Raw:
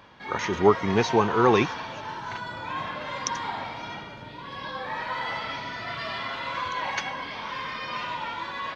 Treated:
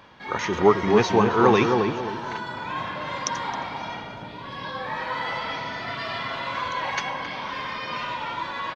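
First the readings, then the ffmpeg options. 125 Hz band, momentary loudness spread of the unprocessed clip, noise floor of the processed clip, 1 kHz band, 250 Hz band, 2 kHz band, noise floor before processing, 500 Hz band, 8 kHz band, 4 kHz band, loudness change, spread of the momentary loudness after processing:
+2.5 dB, 14 LU, −38 dBFS, +2.5 dB, +3.5 dB, +2.0 dB, −41 dBFS, +3.0 dB, can't be measured, +1.5 dB, +2.5 dB, 14 LU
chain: -filter_complex "[0:a]bandreject=frequency=50:width_type=h:width=6,bandreject=frequency=100:width_type=h:width=6,asplit=2[link_01][link_02];[link_02]adelay=268,lowpass=frequency=870:poles=1,volume=-3dB,asplit=2[link_03][link_04];[link_04]adelay=268,lowpass=frequency=870:poles=1,volume=0.36,asplit=2[link_05][link_06];[link_06]adelay=268,lowpass=frequency=870:poles=1,volume=0.36,asplit=2[link_07][link_08];[link_08]adelay=268,lowpass=frequency=870:poles=1,volume=0.36,asplit=2[link_09][link_10];[link_10]adelay=268,lowpass=frequency=870:poles=1,volume=0.36[link_11];[link_01][link_03][link_05][link_07][link_09][link_11]amix=inputs=6:normalize=0,volume=1.5dB"

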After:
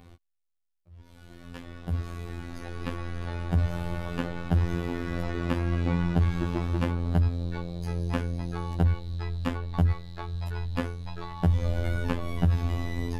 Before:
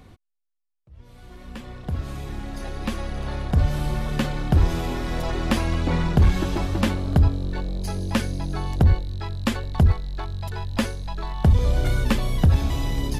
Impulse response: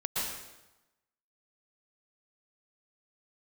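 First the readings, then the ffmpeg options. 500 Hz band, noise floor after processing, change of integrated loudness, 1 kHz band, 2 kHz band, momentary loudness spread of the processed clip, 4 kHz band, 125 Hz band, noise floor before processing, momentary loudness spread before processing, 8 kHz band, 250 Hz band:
−5.0 dB, −72 dBFS, −5.5 dB, −6.0 dB, −5.5 dB, 11 LU, −10.0 dB, −5.0 dB, −77 dBFS, 12 LU, below −10 dB, −4.5 dB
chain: -filter_complex "[0:a]afftfilt=real='hypot(re,im)*cos(PI*b)':imag='0':win_size=2048:overlap=0.75,acrossover=split=1400|3000[link_01][link_02][link_03];[link_01]acompressor=threshold=-19dB:ratio=4[link_04];[link_02]acompressor=threshold=-42dB:ratio=4[link_05];[link_03]acompressor=threshold=-53dB:ratio=4[link_06];[link_04][link_05][link_06]amix=inputs=3:normalize=0"

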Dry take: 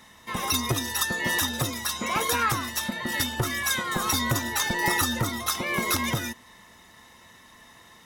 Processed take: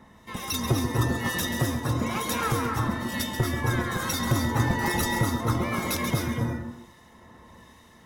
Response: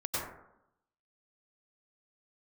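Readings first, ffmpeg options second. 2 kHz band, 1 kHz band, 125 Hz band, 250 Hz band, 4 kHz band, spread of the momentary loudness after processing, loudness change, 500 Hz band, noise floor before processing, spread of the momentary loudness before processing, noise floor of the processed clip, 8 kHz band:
−3.5 dB, −1.0 dB, +6.5 dB, +4.0 dB, −5.5 dB, 5 LU, −1.0 dB, +2.5 dB, −53 dBFS, 5 LU, −54 dBFS, −5.5 dB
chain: -filter_complex "[0:a]tiltshelf=frequency=890:gain=5.5,acrossover=split=1900[link_01][link_02];[link_01]aeval=exprs='val(0)*(1-0.7/2+0.7/2*cos(2*PI*1.1*n/s))':channel_layout=same[link_03];[link_02]aeval=exprs='val(0)*(1-0.7/2-0.7/2*cos(2*PI*1.1*n/s))':channel_layout=same[link_04];[link_03][link_04]amix=inputs=2:normalize=0,asplit=2[link_05][link_06];[1:a]atrim=start_sample=2205,asetrate=40131,aresample=44100,adelay=135[link_07];[link_06][link_07]afir=irnorm=-1:irlink=0,volume=-7.5dB[link_08];[link_05][link_08]amix=inputs=2:normalize=0,volume=1dB"

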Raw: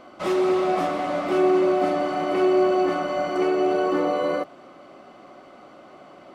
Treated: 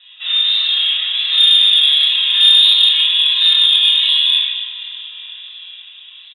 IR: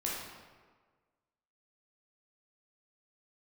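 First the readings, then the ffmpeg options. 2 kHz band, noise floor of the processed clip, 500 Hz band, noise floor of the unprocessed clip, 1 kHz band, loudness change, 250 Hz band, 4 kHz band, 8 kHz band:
+9.0 dB, −40 dBFS, below −35 dB, −48 dBFS, below −15 dB, +12.5 dB, below −40 dB, +34.0 dB, can't be measured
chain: -filter_complex "[0:a]highshelf=frequency=2300:gain=10.5,aecho=1:1:5.5:0.91,lowpass=frequency=3400:width_type=q:width=0.5098,lowpass=frequency=3400:width_type=q:width=0.6013,lowpass=frequency=3400:width_type=q:width=0.9,lowpass=frequency=3400:width_type=q:width=2.563,afreqshift=-4000,aderivative,dynaudnorm=framelen=240:gausssize=11:maxgain=4.5dB,crystalizer=i=1.5:c=0,flanger=delay=7.7:depth=6.7:regen=-51:speed=1.4:shape=sinusoidal,asplit=2[link_01][link_02];[link_02]asplit=5[link_03][link_04][link_05][link_06][link_07];[link_03]adelay=459,afreqshift=-40,volume=-18.5dB[link_08];[link_04]adelay=918,afreqshift=-80,volume=-23.4dB[link_09];[link_05]adelay=1377,afreqshift=-120,volume=-28.3dB[link_10];[link_06]adelay=1836,afreqshift=-160,volume=-33.1dB[link_11];[link_07]adelay=2295,afreqshift=-200,volume=-38dB[link_12];[link_08][link_09][link_10][link_11][link_12]amix=inputs=5:normalize=0[link_13];[link_01][link_13]amix=inputs=2:normalize=0[link_14];[1:a]atrim=start_sample=2205[link_15];[link_14][link_15]afir=irnorm=-1:irlink=0,asplit=2[link_16][link_17];[link_17]acontrast=71,volume=1dB[link_18];[link_16][link_18]amix=inputs=2:normalize=0,volume=-4dB"

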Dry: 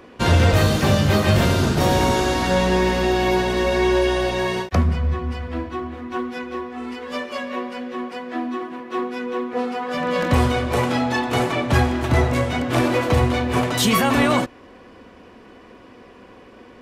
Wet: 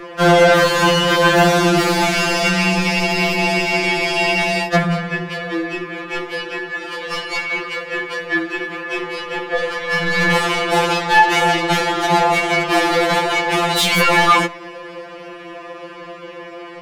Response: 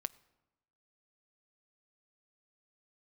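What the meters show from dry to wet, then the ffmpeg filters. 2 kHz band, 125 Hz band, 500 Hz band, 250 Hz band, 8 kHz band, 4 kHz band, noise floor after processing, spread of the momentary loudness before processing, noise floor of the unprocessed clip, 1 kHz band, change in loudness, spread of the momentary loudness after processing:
+9.5 dB, −4.0 dB, +3.0 dB, 0.0 dB, +4.5 dB, +7.5 dB, −35 dBFS, 12 LU, −46 dBFS, +6.5 dB, +4.0 dB, 21 LU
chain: -filter_complex "[0:a]asplit=2[link_01][link_02];[link_02]highpass=frequency=720:poles=1,volume=20dB,asoftclip=type=tanh:threshold=-5dB[link_03];[link_01][link_03]amix=inputs=2:normalize=0,lowpass=frequency=7600:poles=1,volume=-6dB,acrossover=split=220|2400[link_04][link_05][link_06];[link_06]dynaudnorm=framelen=530:gausssize=7:maxgain=3dB[link_07];[link_04][link_05][link_07]amix=inputs=3:normalize=0,aeval=exprs='val(0)+0.00631*(sin(2*PI*50*n/s)+sin(2*PI*2*50*n/s)/2+sin(2*PI*3*50*n/s)/3+sin(2*PI*4*50*n/s)/4+sin(2*PI*5*50*n/s)/5)':channel_layout=same,acontrast=39,asplit=2[link_08][link_09];[1:a]atrim=start_sample=2205,highshelf=frequency=2900:gain=-10[link_10];[link_09][link_10]afir=irnorm=-1:irlink=0,volume=13.5dB[link_11];[link_08][link_11]amix=inputs=2:normalize=0,afftfilt=real='re*2.83*eq(mod(b,8),0)':imag='im*2.83*eq(mod(b,8),0)':win_size=2048:overlap=0.75,volume=-15dB"

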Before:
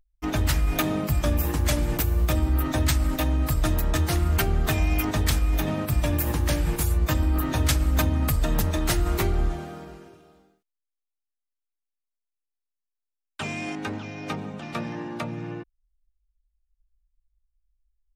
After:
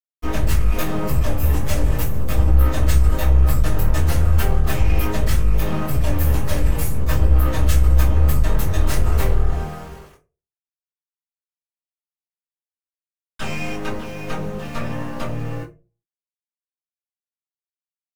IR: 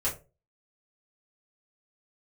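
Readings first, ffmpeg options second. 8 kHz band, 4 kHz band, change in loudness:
−1.0 dB, −1.5 dB, +4.5 dB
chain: -filter_complex "[0:a]aeval=exprs='val(0)*gte(abs(val(0)),0.0075)':channel_layout=same,aeval=exprs='(tanh(28.2*val(0)+0.8)-tanh(0.8))/28.2':channel_layout=same[link_01];[1:a]atrim=start_sample=2205[link_02];[link_01][link_02]afir=irnorm=-1:irlink=0,volume=2dB"

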